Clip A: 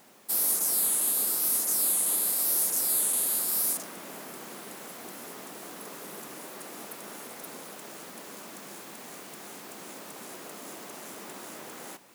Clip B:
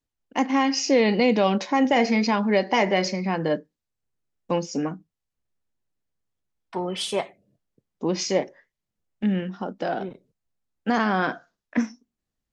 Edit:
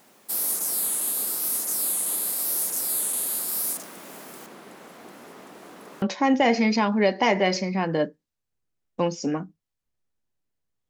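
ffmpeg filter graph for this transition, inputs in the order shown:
-filter_complex "[0:a]asettb=1/sr,asplit=3[s0][s1][s2];[s0]atrim=end=4.464[s3];[s1]atrim=start=4.46:end=6.02,asetpts=PTS-STARTPTS,afade=t=in:d=0.004:c=qsin,afade=t=out:st=1.556:d=0.004:c=qsin,lowpass=f=2500:p=1[s4];[s2]atrim=start=6.016[s5];[s3][s4]acrossfade=d=0.004:c1=hsin:c2=qsin[s6];[s6][s5]acrossfade=d=0.004:c1=qsin:c2=hsin,apad=whole_dur=10.89,atrim=end=10.89,atrim=end=6.022[s7];[1:a]atrim=start=1.528:end=6.4[s8];[s7][s8]acrossfade=d=0.004:c1=hsin:c2=hsin"

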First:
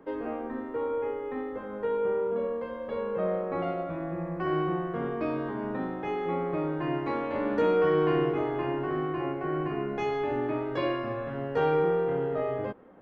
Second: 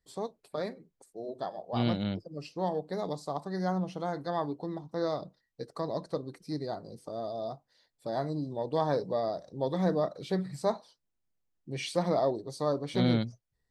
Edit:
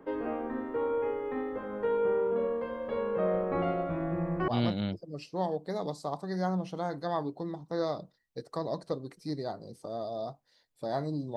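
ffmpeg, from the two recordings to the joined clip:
-filter_complex "[0:a]asettb=1/sr,asplit=3[s0][s1][s2];[s0]atrim=end=3.344[s3];[s1]atrim=start=3.34:end=4.48,asetpts=PTS-STARTPTS,afade=t=in:d=0.004:c=qsin,afade=t=out:st=1.136:d=0.004:c=qsin,lowshelf=f=120:g=8.5[s4];[s2]atrim=start=4.476[s5];[s3][s4]acrossfade=d=0.004:c1=hsin:c2=qsin[s6];[s6][s5]acrossfade=d=0.004:c1=qsin:c2=hsin,apad=whole_dur=11.36,atrim=end=11.36,atrim=end=4.482[s7];[1:a]atrim=start=1.708:end=8.59[s8];[s7][s8]acrossfade=d=0.004:c1=hsin:c2=hsin"

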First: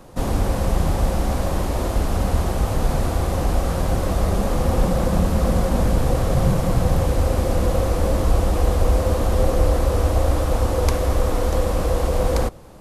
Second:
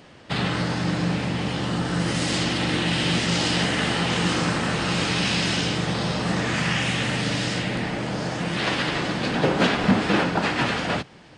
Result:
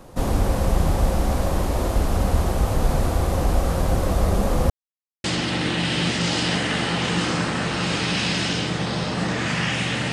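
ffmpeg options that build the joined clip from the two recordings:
-filter_complex "[0:a]apad=whole_dur=10.12,atrim=end=10.12,asplit=2[s0][s1];[s0]atrim=end=4.7,asetpts=PTS-STARTPTS,afade=t=out:st=4.696:d=0.004:c=hsin[s2];[s1]atrim=start=4.7:end=5.24,asetpts=PTS-STARTPTS,volume=0[s3];[1:a]atrim=start=2.32:end=7.2,asetpts=PTS-STARTPTS,afade=t=in:d=0.004:c=hsin[s4];[s2][s3][s4]concat=n=3:v=0:a=1"

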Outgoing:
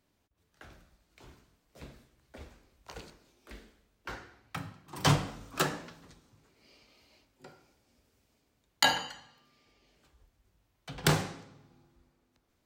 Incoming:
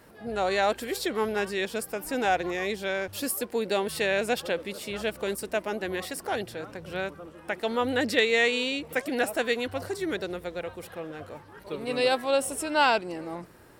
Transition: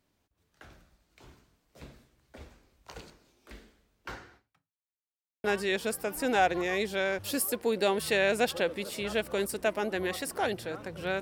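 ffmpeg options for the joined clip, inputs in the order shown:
-filter_complex "[0:a]apad=whole_dur=11.21,atrim=end=11.21,asplit=2[s0][s1];[s0]atrim=end=4.95,asetpts=PTS-STARTPTS,afade=t=out:st=4.36:d=0.59:c=exp[s2];[s1]atrim=start=4.95:end=5.44,asetpts=PTS-STARTPTS,volume=0[s3];[1:a]atrim=start=1.33:end=7.1,asetpts=PTS-STARTPTS,afade=t=in:d=0.004:c=hsin[s4];[s2][s3][s4]concat=n=3:v=0:a=1"

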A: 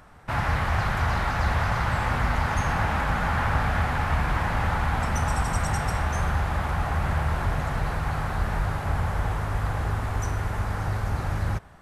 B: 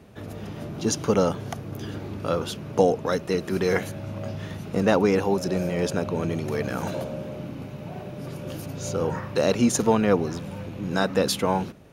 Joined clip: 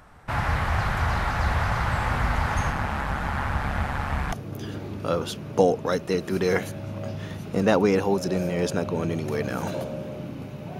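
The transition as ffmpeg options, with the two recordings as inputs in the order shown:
-filter_complex "[0:a]asplit=3[s0][s1][s2];[s0]afade=t=out:st=2.69:d=0.02[s3];[s1]tremolo=f=140:d=0.667,afade=t=in:st=2.69:d=0.02,afade=t=out:st=4.32:d=0.02[s4];[s2]afade=t=in:st=4.32:d=0.02[s5];[s3][s4][s5]amix=inputs=3:normalize=0,apad=whole_dur=10.79,atrim=end=10.79,atrim=end=4.322[s6];[1:a]atrim=start=1.518:end=7.99[s7];[s6][s7]acrossfade=d=0.004:c1=hsin:c2=hsin"

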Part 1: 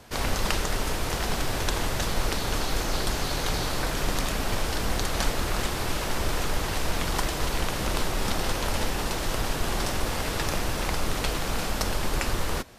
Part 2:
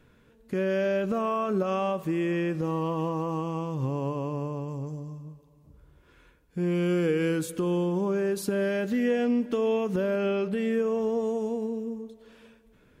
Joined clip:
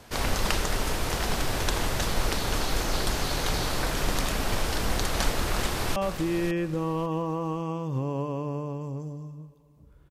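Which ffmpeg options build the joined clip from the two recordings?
-filter_complex "[0:a]apad=whole_dur=10.1,atrim=end=10.1,atrim=end=5.962[s0];[1:a]atrim=start=1.828:end=5.97[s1];[s0][s1]acrossfade=d=0.004:c1=hsin:c2=hsin,asplit=2[s2][s3];[s3]afade=t=in:st=5.46:d=0.01,afade=t=out:st=5.96:d=0.01,aecho=0:1:550|1100|1650:0.354813|0.0887033|0.0221758[s4];[s2][s4]amix=inputs=2:normalize=0"

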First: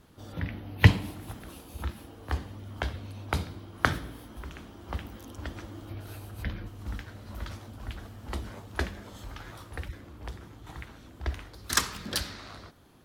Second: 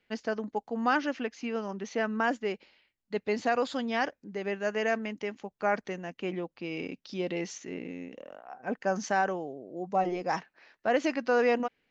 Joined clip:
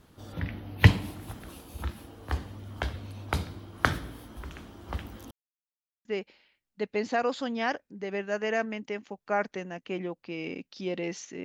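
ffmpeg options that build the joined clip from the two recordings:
-filter_complex "[0:a]apad=whole_dur=11.44,atrim=end=11.44,asplit=2[s0][s1];[s0]atrim=end=5.31,asetpts=PTS-STARTPTS,afade=t=out:st=5.306:d=0.004:c=hsin[s2];[s1]atrim=start=5.31:end=6.05,asetpts=PTS-STARTPTS,volume=0[s3];[1:a]atrim=start=2.38:end=7.77,asetpts=PTS-STARTPTS,afade=t=in:d=0.004:c=hsin[s4];[s2][s3][s4]concat=n=3:v=0:a=1"

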